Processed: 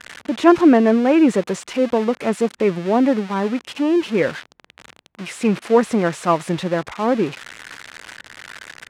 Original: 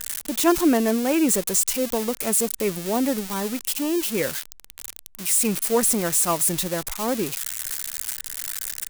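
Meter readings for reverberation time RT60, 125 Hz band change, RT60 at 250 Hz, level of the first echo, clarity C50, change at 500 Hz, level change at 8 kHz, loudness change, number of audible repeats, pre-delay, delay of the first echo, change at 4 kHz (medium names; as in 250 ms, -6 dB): no reverb, +6.5 dB, no reverb, no echo, no reverb, +7.0 dB, -16.5 dB, +4.0 dB, no echo, no reverb, no echo, -2.5 dB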